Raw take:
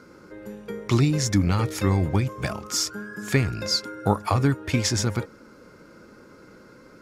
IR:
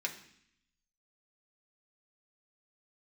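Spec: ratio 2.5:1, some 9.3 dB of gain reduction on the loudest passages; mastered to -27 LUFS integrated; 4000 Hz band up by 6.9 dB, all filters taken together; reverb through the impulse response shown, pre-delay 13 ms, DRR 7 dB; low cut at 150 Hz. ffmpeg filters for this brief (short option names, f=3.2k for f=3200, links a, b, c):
-filter_complex "[0:a]highpass=150,equalizer=f=4k:t=o:g=9,acompressor=threshold=-27dB:ratio=2.5,asplit=2[a][b];[1:a]atrim=start_sample=2205,adelay=13[c];[b][c]afir=irnorm=-1:irlink=0,volume=-10dB[d];[a][d]amix=inputs=2:normalize=0,volume=2dB"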